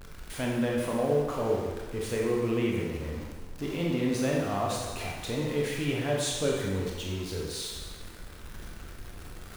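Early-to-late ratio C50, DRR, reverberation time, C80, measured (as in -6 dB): 0.0 dB, -2.5 dB, 1.4 s, 2.5 dB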